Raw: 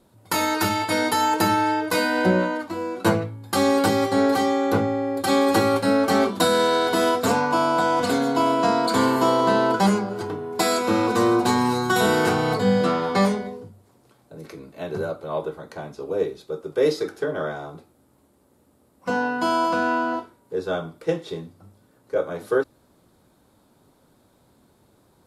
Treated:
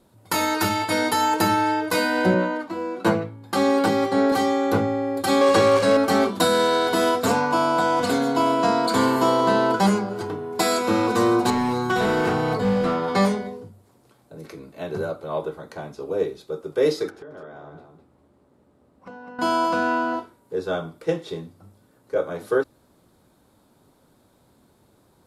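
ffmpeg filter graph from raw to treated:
-filter_complex "[0:a]asettb=1/sr,asplit=3[a][b][c];[a]atrim=end=2.344[d];[b]atrim=start=2.34:end=4.32,asetpts=PTS-STARTPTS,afade=t=in:d=0.004:c=qsin,afade=t=out:st=1.976:d=0.004:c=qsin,highpass=f=120:w=0.5412,highpass=f=120:w=1.3066,highshelf=f=5.6k:g=-9[e];[c]atrim=start=4.316[f];[d][e]acrossfade=d=0.004:c1=hsin:c2=qsin[g];[g][f]acrossfade=d=0.004:c1=qsin:c2=hsin,asettb=1/sr,asplit=3[h][i][j];[h]atrim=end=5.414[k];[i]atrim=start=5.41:end=5.97,asetpts=PTS-STARTPTS,afade=t=in:d=0.004:c=qsin,afade=t=out:st=0.556:d=0.004:c=qsin,aeval=exprs='val(0)+0.5*0.075*sgn(val(0))':c=same,highpass=120,lowpass=7.5k,aecho=1:1:1.8:0.47,atrim=end_sample=24696[l];[j]atrim=start=5.966[m];[k][l]acrossfade=d=0.004:c1=hsin:c2=qsin[n];[n][m]acrossfade=d=0.004:c1=qsin:c2=hsin,asettb=1/sr,asplit=3[o][p][q];[o]atrim=end=11.504[r];[p]atrim=start=11.5:end=13.08,asetpts=PTS-STARTPTS,afade=t=in:d=0.004:c=qsin,afade=t=out:st=1.576:d=0.004:c=qsin,acrossover=split=6600[s][t];[t]acompressor=threshold=-48dB:ratio=4:attack=1:release=60[u];[s][u]amix=inputs=2:normalize=0,equalizer=f=5.2k:w=0.43:g=-5,asoftclip=type=hard:threshold=-16.5dB[v];[q]atrim=start=13.076[w];[r][v]acrossfade=d=0.004:c1=hsin:c2=qsin[x];[x][w]acrossfade=d=0.004:c1=qsin:c2=hsin,asettb=1/sr,asplit=3[y][z][aa];[y]atrim=end=17.104[ab];[z]atrim=start=17.1:end=19.39,asetpts=PTS-STARTPTS,afade=t=in:d=0.004:c=qsin,afade=t=out:st=2.286:d=0.004:c=qsin,aemphasis=mode=reproduction:type=75fm,acompressor=threshold=-39dB:ratio=5:attack=3.2:release=140:knee=1:detection=peak,aecho=1:1:205:0.422,atrim=end_sample=100989[ac];[aa]atrim=start=19.386[ad];[ab][ac]acrossfade=d=0.004:c1=hsin:c2=qsin[ae];[ae][ad]acrossfade=d=0.004:c1=qsin:c2=hsin"

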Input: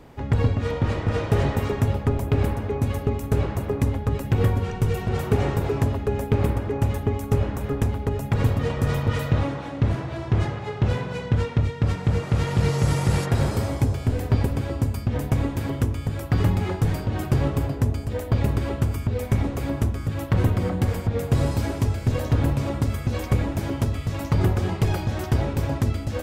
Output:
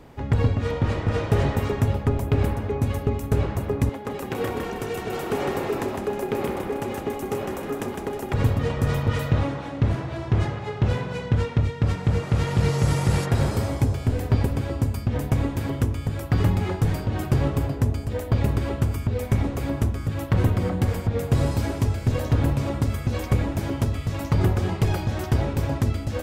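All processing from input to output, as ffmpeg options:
-filter_complex "[0:a]asettb=1/sr,asplit=3[a][b][c];[a]atrim=end=3.894[d];[b]atrim=start=3.89:end=8.34,asetpts=PTS-STARTPTS,afade=t=in:d=0.004:c=qsin,afade=t=out:st=4.446:d=0.004:c=qsin,highpass=280,asplit=6[e][f][g][h][i][j];[f]adelay=157,afreqshift=-37,volume=-4dB[k];[g]adelay=314,afreqshift=-74,volume=-12dB[l];[h]adelay=471,afreqshift=-111,volume=-19.9dB[m];[i]adelay=628,afreqshift=-148,volume=-27.9dB[n];[j]adelay=785,afreqshift=-185,volume=-35.8dB[o];[e][k][l][m][n][o]amix=inputs=6:normalize=0,atrim=end_sample=196245[p];[c]atrim=start=8.336[q];[d][p]acrossfade=d=0.004:c1=hsin:c2=qsin[r];[r][q]acrossfade=d=0.004:c1=qsin:c2=hsin"

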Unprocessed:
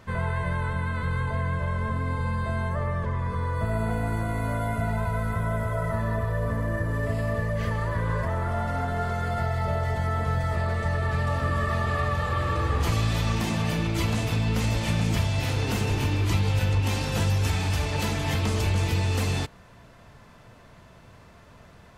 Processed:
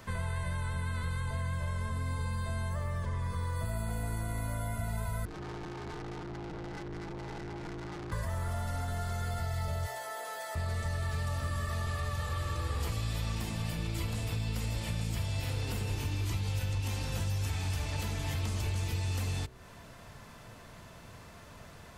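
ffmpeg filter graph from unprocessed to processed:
-filter_complex "[0:a]asettb=1/sr,asplit=3[a][b][c];[a]atrim=end=5.254[d];[b]atrim=start=5.25:end=8.12,asetpts=PTS-STARTPTS,afade=t=in:d=0.004:c=qsin,afade=t=out:st=2.866:d=0.004:c=qsin,asoftclip=type=hard:threshold=-31.5dB,adynamicsmooth=sensitivity=4.5:basefreq=710,aeval=exprs='val(0)*sin(2*PI*240*n/s)':c=same[e];[c]atrim=start=8.116[f];[d][e]acrossfade=d=0.004:c1=hsin:c2=qsin[g];[g][f]acrossfade=d=0.004:c1=qsin:c2=hsin,asettb=1/sr,asplit=3[h][i][j];[h]atrim=end=9.864[k];[i]atrim=start=9.86:end=10.55,asetpts=PTS-STARTPTS,afade=t=in:d=0.004:c=qsin,afade=t=out:st=0.686:d=0.004:c=qsin,highpass=f=410:w=0.5412,highpass=f=410:w=1.3066,highshelf=f=9k:g=7.5,asplit=2[l][m];[m]adelay=17,volume=-5dB[n];[l][n]amix=inputs=2:normalize=0,atrim=end_sample=30429[o];[j]atrim=start=10.546[p];[k][o]acrossfade=d=0.004:c1=hsin:c2=qsin[q];[q][p]acrossfade=d=0.004:c1=qsin:c2=hsin,asettb=1/sr,asplit=3[r][s][t];[r]atrim=end=12.594[u];[s]atrim=start=12.59:end=15.96,asetpts=PTS-STARTPTS,afade=t=in:d=0.004:c=qsin,afade=t=out:st=3.366:d=0.004:c=qsin,equalizer=f=490:w=6.9:g=4.5,bandreject=f=6.2k:w=9.1[v];[t]atrim=start=15.956[w];[u][v]acrossfade=d=0.004:c1=hsin:c2=qsin[x];[x][w]acrossfade=d=0.004:c1=qsin:c2=hsin,highshelf=f=5k:g=8.5,bandreject=f=62.98:t=h:w=4,bandreject=f=125.96:t=h:w=4,bandreject=f=188.94:t=h:w=4,bandreject=f=251.92:t=h:w=4,bandreject=f=314.9:t=h:w=4,bandreject=f=377.88:t=h:w=4,bandreject=f=440.86:t=h:w=4,bandreject=f=503.84:t=h:w=4,bandreject=f=566.82:t=h:w=4,bandreject=f=629.8:t=h:w=4,acrossover=split=95|3500[y][z][aa];[y]acompressor=threshold=-34dB:ratio=4[ab];[z]acompressor=threshold=-40dB:ratio=4[ac];[aa]acompressor=threshold=-48dB:ratio=4[ad];[ab][ac][ad]amix=inputs=3:normalize=0"

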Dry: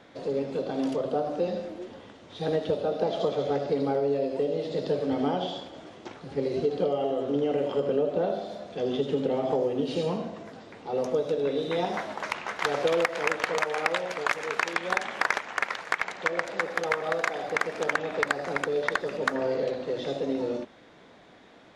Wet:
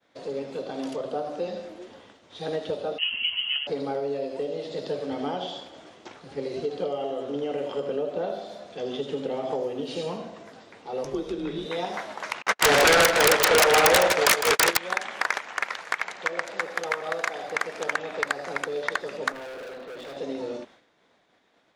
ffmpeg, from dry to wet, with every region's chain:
-filter_complex "[0:a]asettb=1/sr,asplit=3[a][b][c];[a]atrim=end=2.984[d];[b]atrim=start=2.98:end=3.67,asetpts=PTS-STARTPTS,afade=t=in:d=0.004:c=qsin,afade=t=out:st=0.686:d=0.004:c=qsin,highpass=f=290:p=1,lowpass=f=2.9k:t=q:w=0.5098,lowpass=f=2.9k:t=q:w=0.6013,lowpass=f=2.9k:t=q:w=0.9,lowpass=f=2.9k:t=q:w=2.563,afreqshift=-3400[e];[c]atrim=start=3.666[f];[d][e]acrossfade=d=0.004:c1=hsin:c2=qsin[g];[g][f]acrossfade=d=0.004:c1=qsin:c2=hsin,asettb=1/sr,asplit=3[h][i][j];[h]atrim=end=11.044[k];[i]atrim=start=11.04:end=11.66,asetpts=PTS-STARTPTS,afade=t=in:d=0.004:c=qsin,afade=t=out:st=0.616:d=0.004:c=qsin,highshelf=f=8.9k:g=-4,afreqshift=-110[l];[j]atrim=start=11.656[m];[k][l]acrossfade=d=0.004:c1=hsin:c2=qsin[n];[n][m]acrossfade=d=0.004:c1=qsin:c2=hsin,asettb=1/sr,asplit=3[o][p][q];[o]atrim=end=12.424[r];[p]atrim=start=12.42:end=14.77,asetpts=PTS-STARTPTS,afade=t=in:d=0.004:c=qsin,afade=t=out:st=2.346:d=0.004:c=qsin,agate=range=-51dB:threshold=-33dB:ratio=16:release=100:detection=peak,aeval=exprs='0.224*sin(PI/2*4.47*val(0)/0.224)':c=same,aecho=1:1:157:0.398,atrim=end_sample=103635[s];[q]atrim=start=14.766[t];[r][s]acrossfade=d=0.004:c1=hsin:c2=qsin[u];[u][t]acrossfade=d=0.004:c1=qsin:c2=hsin,asettb=1/sr,asplit=3[v][w][x];[v]atrim=end=19.324[y];[w]atrim=start=19.32:end=20.17,asetpts=PTS-STARTPTS,afade=t=in:d=0.004:c=qsin,afade=t=out:st=0.846:d=0.004:c=qsin,highpass=170,lowpass=3.4k,asoftclip=type=hard:threshold=-34.5dB[z];[x]atrim=start=20.166[aa];[y][z]acrossfade=d=0.004:c1=hsin:c2=qsin[ab];[ab][aa]acrossfade=d=0.004:c1=qsin:c2=hsin,highshelf=f=6.7k:g=5,agate=range=-33dB:threshold=-45dB:ratio=3:detection=peak,lowshelf=f=390:g=-7"

